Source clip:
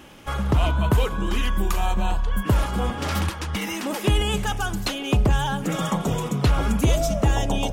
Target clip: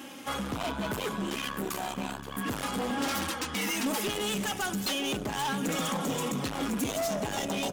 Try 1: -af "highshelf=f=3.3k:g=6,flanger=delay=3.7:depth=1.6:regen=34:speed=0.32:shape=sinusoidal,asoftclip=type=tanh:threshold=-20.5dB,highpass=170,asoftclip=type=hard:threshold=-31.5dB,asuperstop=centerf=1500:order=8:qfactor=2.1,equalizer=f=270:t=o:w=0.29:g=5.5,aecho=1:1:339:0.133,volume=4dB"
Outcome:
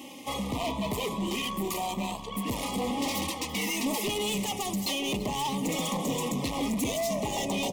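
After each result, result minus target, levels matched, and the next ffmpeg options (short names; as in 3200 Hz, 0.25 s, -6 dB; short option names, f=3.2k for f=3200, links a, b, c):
echo 0.186 s early; soft clip: distortion -6 dB; 2000 Hz band -3.0 dB
-af "highshelf=f=3.3k:g=6,flanger=delay=3.7:depth=1.6:regen=34:speed=0.32:shape=sinusoidal,asoftclip=type=tanh:threshold=-20.5dB,highpass=170,asoftclip=type=hard:threshold=-31.5dB,asuperstop=centerf=1500:order=8:qfactor=2.1,equalizer=f=270:t=o:w=0.29:g=5.5,aecho=1:1:525:0.133,volume=4dB"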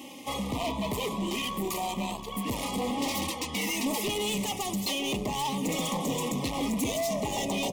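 soft clip: distortion -6 dB; 2000 Hz band -3.0 dB
-af "highshelf=f=3.3k:g=6,flanger=delay=3.7:depth=1.6:regen=34:speed=0.32:shape=sinusoidal,asoftclip=type=tanh:threshold=-27.5dB,highpass=170,asoftclip=type=hard:threshold=-31.5dB,asuperstop=centerf=1500:order=8:qfactor=2.1,equalizer=f=270:t=o:w=0.29:g=5.5,aecho=1:1:525:0.133,volume=4dB"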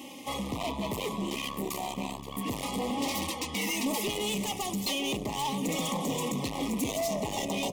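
2000 Hz band -3.0 dB
-af "highshelf=f=3.3k:g=6,flanger=delay=3.7:depth=1.6:regen=34:speed=0.32:shape=sinusoidal,asoftclip=type=tanh:threshold=-27.5dB,highpass=170,asoftclip=type=hard:threshold=-31.5dB,equalizer=f=270:t=o:w=0.29:g=5.5,aecho=1:1:525:0.133,volume=4dB"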